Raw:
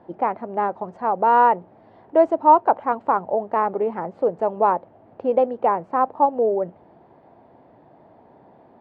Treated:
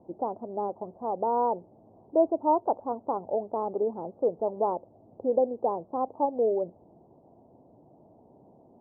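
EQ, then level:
Bessel low-pass filter 540 Hz, order 8
dynamic equaliser 170 Hz, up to −6 dB, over −47 dBFS, Q 1.9
−2.5 dB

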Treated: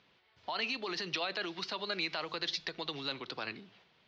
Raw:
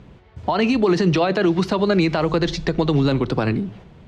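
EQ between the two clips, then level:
resonant band-pass 5,000 Hz, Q 1.6
high-frequency loss of the air 210 metres
+3.5 dB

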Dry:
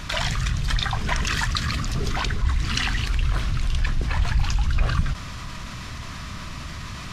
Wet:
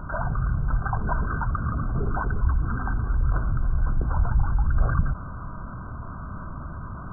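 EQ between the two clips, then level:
linear-phase brick-wall low-pass 1,600 Hz
0.0 dB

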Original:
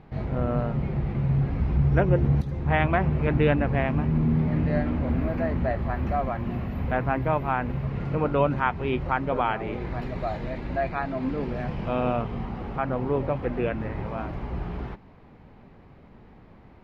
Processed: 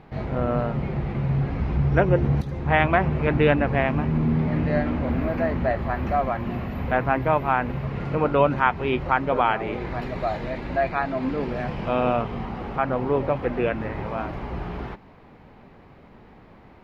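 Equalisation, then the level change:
low-shelf EQ 250 Hz −6.5 dB
+5.0 dB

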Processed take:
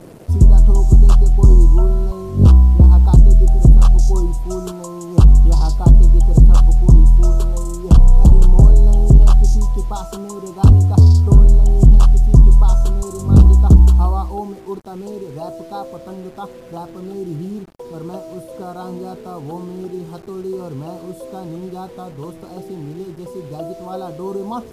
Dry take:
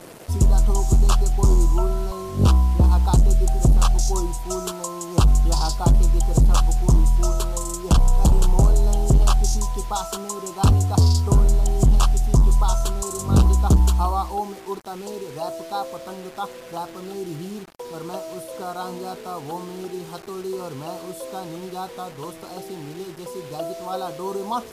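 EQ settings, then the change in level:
tilt shelving filter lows +3.5 dB, about 700 Hz
low-shelf EQ 440 Hz +8 dB
−3.0 dB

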